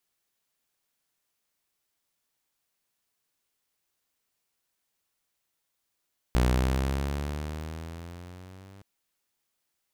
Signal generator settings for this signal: gliding synth tone saw, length 2.47 s, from 60.7 Hz, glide +8.5 st, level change -28.5 dB, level -17 dB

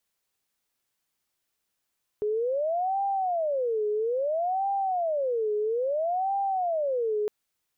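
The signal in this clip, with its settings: siren wail 419–793 Hz 0.6 per s sine -24 dBFS 5.06 s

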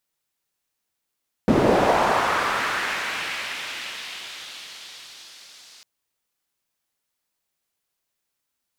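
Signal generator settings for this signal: swept filtered noise pink, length 4.35 s bandpass, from 250 Hz, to 4.8 kHz, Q 1.5, linear, gain ramp -33 dB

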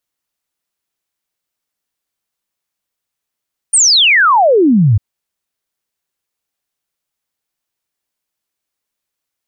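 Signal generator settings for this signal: log sweep 9.5 kHz -> 94 Hz 1.25 s -6 dBFS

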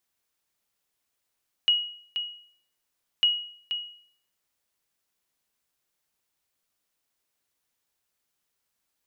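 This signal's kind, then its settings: sonar ping 2.9 kHz, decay 0.56 s, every 1.55 s, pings 2, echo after 0.48 s, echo -9 dB -14.5 dBFS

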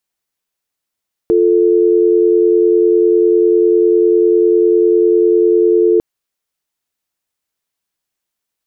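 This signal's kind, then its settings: call progress tone dial tone, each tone -10.5 dBFS 4.70 s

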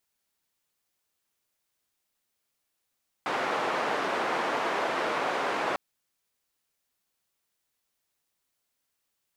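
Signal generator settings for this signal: noise band 370–1200 Hz, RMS -29 dBFS 2.50 s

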